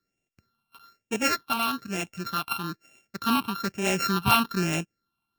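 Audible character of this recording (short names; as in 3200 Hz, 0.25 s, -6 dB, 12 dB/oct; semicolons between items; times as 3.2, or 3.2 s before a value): a buzz of ramps at a fixed pitch in blocks of 32 samples; phasing stages 6, 1.1 Hz, lowest notch 490–1200 Hz; AAC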